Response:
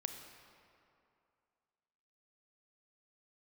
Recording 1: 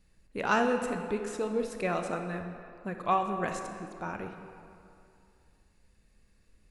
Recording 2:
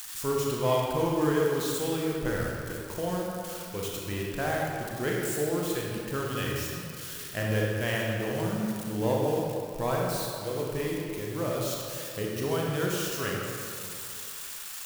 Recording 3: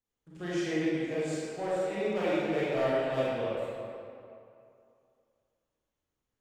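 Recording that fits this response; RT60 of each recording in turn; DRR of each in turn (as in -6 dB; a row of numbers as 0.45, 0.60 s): 1; 2.5, 2.6, 2.6 s; 5.5, -3.0, -10.0 dB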